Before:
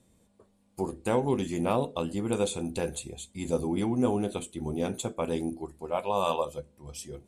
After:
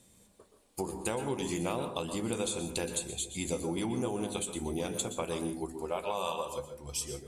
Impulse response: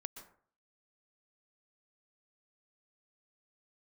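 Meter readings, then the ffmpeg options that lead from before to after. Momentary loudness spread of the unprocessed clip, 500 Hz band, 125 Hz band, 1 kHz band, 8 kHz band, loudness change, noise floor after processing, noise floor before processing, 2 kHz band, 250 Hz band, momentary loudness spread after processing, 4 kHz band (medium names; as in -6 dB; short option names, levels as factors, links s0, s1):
12 LU, -5.0 dB, -5.0 dB, -5.0 dB, +4.5 dB, -4.0 dB, -64 dBFS, -67 dBFS, -0.5 dB, -5.5 dB, 4 LU, +2.0 dB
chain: -filter_complex "[0:a]highshelf=f=2000:g=9.5,bandreject=f=50:t=h:w=6,bandreject=f=100:t=h:w=6,bandreject=f=150:t=h:w=6,bandreject=f=200:t=h:w=6,bandreject=f=250:t=h:w=6,acompressor=threshold=0.0282:ratio=6[s0];[1:a]atrim=start_sample=2205[s1];[s0][s1]afir=irnorm=-1:irlink=0,volume=1.68"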